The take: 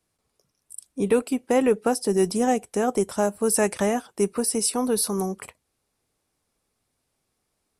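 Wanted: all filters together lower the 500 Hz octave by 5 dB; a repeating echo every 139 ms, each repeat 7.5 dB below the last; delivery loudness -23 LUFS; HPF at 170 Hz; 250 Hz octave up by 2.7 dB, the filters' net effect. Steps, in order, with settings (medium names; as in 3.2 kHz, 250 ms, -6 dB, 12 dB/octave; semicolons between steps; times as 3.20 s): high-pass 170 Hz; peaking EQ 250 Hz +6 dB; peaking EQ 500 Hz -8 dB; feedback delay 139 ms, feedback 42%, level -7.5 dB; trim +0.5 dB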